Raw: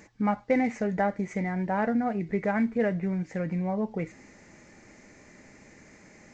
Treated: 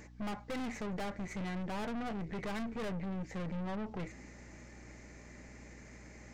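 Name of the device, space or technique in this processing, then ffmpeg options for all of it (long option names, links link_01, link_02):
valve amplifier with mains hum: -af "aeval=exprs='(tanh(70.8*val(0)+0.5)-tanh(0.5))/70.8':channel_layout=same,aeval=exprs='val(0)+0.002*(sin(2*PI*60*n/s)+sin(2*PI*2*60*n/s)/2+sin(2*PI*3*60*n/s)/3+sin(2*PI*4*60*n/s)/4+sin(2*PI*5*60*n/s)/5)':channel_layout=same"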